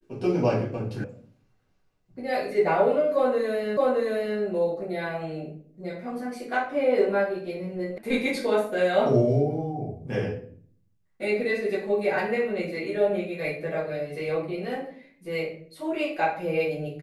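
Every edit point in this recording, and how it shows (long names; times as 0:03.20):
0:01.04: cut off before it has died away
0:03.77: the same again, the last 0.62 s
0:07.98: cut off before it has died away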